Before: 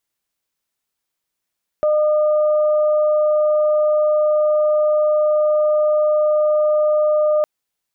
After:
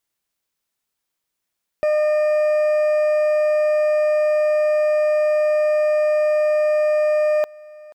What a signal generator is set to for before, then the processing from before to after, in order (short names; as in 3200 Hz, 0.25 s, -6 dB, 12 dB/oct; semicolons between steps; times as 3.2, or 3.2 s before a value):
steady additive tone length 5.61 s, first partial 607 Hz, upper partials -15 dB, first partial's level -13 dB
hard clip -16 dBFS; echo 0.483 s -23 dB